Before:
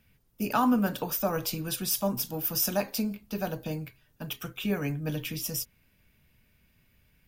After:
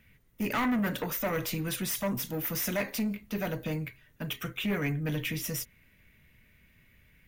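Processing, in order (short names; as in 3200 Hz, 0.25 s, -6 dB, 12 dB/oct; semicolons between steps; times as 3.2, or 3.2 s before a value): soft clip -28 dBFS, distortion -9 dB; thirty-one-band EQ 800 Hz -5 dB, 2000 Hz +10 dB, 5000 Hz -7 dB, 8000 Hz -3 dB, 12500 Hz -7 dB; gain +3 dB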